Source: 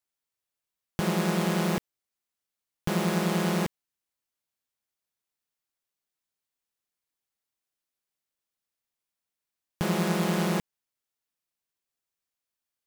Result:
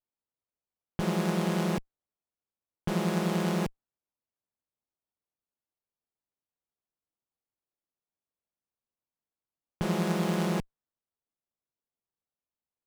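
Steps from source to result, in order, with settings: low-pass opened by the level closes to 1800 Hz, open at -24.5 dBFS; running maximum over 17 samples; gain -1.5 dB

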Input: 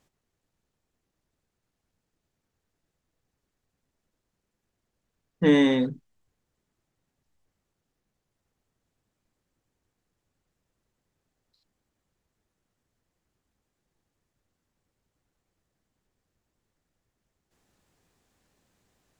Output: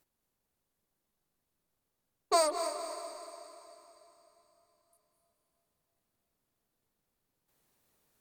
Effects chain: bell 5300 Hz +10 dB 1.9 oct; on a send: diffused feedback echo 0.581 s, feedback 57%, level -8 dB; on the sum: speed mistake 33 rpm record played at 78 rpm; gain -7 dB

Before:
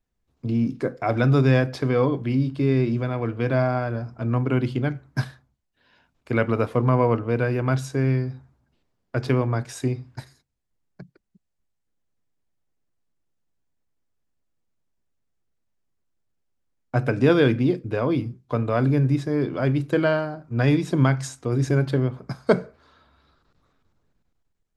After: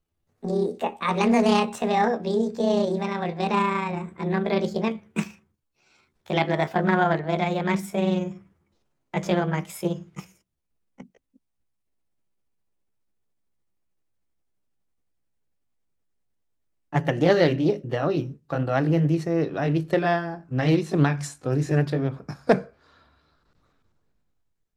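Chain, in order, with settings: gliding pitch shift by +9 st ending unshifted; Doppler distortion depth 0.27 ms

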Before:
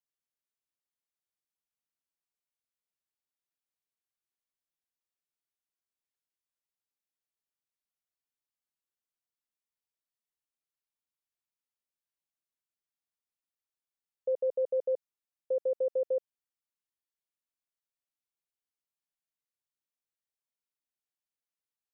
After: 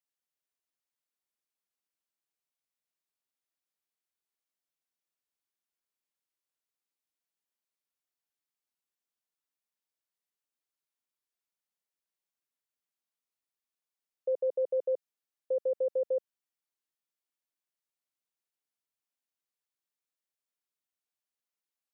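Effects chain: HPF 190 Hz

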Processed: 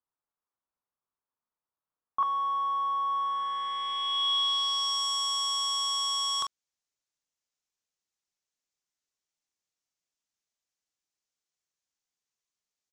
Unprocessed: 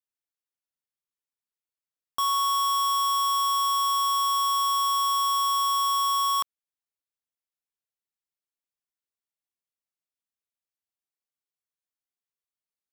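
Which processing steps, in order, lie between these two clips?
early reflections 25 ms -15 dB, 44 ms -11.5 dB; wrapped overs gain 27.5 dB; low-pass sweep 1100 Hz -> 6500 Hz, 3.06–5.06; gain +2 dB

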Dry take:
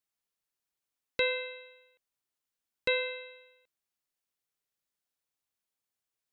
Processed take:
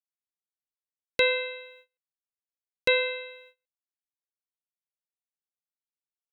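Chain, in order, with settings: gate -59 dBFS, range -28 dB; gain +6 dB

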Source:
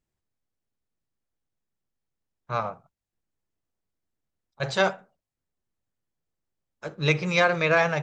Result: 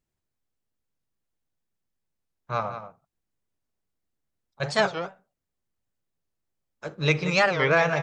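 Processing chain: outdoor echo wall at 31 m, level -10 dB; record warp 45 rpm, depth 250 cents

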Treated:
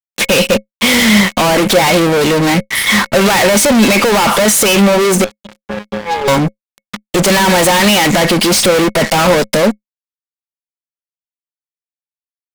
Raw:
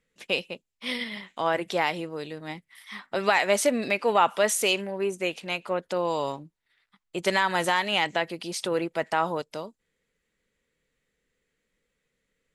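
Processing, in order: soft clip -23.5 dBFS, distortion -8 dB; 5.24–6.28 octave resonator G#, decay 0.62 s; fuzz box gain 53 dB, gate -57 dBFS; small resonant body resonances 210/540/2200 Hz, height 8 dB, ringing for 0.1 s; gain +3 dB

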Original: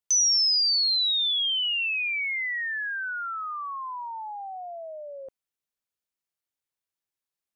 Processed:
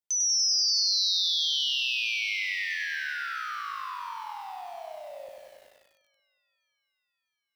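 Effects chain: 3.28–4.44 notch 760 Hz, Q 13; on a send: split-band echo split 2200 Hz, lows 0.182 s, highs 0.65 s, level -13 dB; on the sum: lo-fi delay 96 ms, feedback 80%, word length 9-bit, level -3 dB; gain -6 dB

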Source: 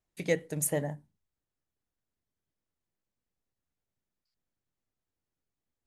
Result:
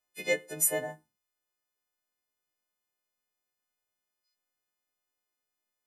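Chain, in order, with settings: frequency quantiser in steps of 3 st; tone controls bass -14 dB, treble -7 dB

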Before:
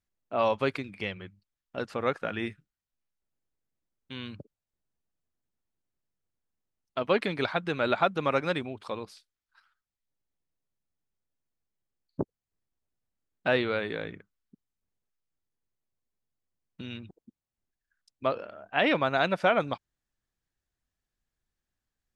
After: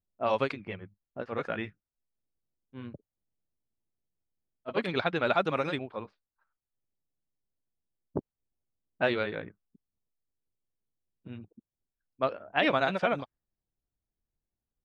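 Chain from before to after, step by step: low-pass opened by the level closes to 700 Hz, open at -22 dBFS; granular stretch 0.67×, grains 0.169 s

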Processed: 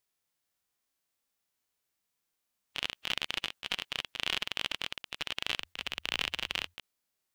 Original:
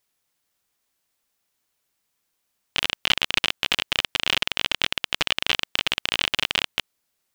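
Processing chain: harmonic-percussive split percussive -17 dB; 5.55–6.74 frequency shift -87 Hz; gain -3 dB

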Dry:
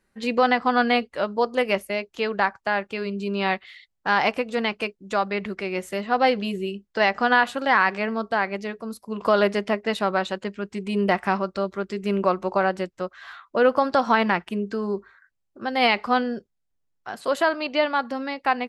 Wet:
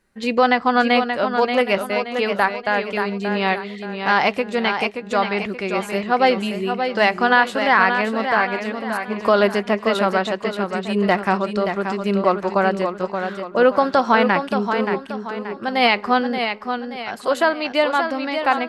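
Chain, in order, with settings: warbling echo 0.578 s, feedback 40%, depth 55 cents, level -7 dB; gain +3.5 dB

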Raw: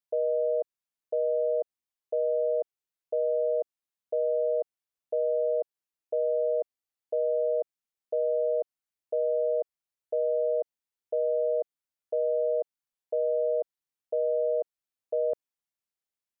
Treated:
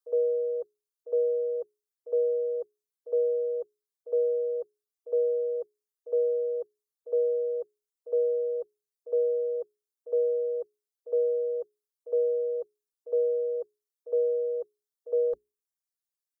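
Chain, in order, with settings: notches 60/120/180/240/300/360/420 Hz; reverb removal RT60 2 s; fixed phaser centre 480 Hz, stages 8; comb 2.5 ms, depth 71%; reverse echo 62 ms -16 dB; gain +3 dB

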